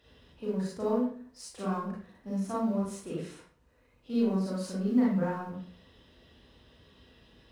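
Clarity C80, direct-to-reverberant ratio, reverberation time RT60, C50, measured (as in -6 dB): 6.0 dB, -6.5 dB, 0.50 s, 1.0 dB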